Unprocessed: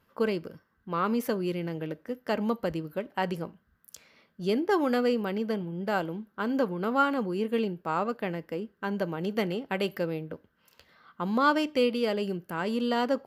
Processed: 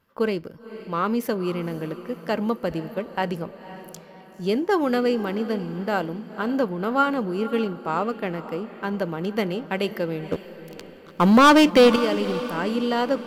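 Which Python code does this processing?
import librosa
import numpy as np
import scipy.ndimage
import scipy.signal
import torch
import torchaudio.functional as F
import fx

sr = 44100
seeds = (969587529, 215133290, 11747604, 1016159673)

p1 = fx.leveller(x, sr, passes=3, at=(10.32, 11.96))
p2 = fx.backlash(p1, sr, play_db=-41.5)
p3 = p1 + F.gain(torch.from_numpy(p2), -5.0).numpy()
y = fx.echo_diffused(p3, sr, ms=515, feedback_pct=48, wet_db=-14.0)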